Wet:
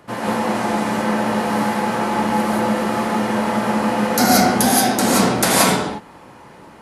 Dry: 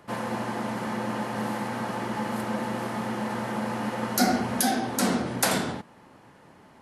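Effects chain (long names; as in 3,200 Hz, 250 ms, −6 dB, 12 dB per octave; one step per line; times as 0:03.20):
reverb whose tail is shaped and stops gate 200 ms rising, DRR −5 dB
0:00.55–0:01.01: noise in a band 1,300–10,000 Hz −48 dBFS
level +5 dB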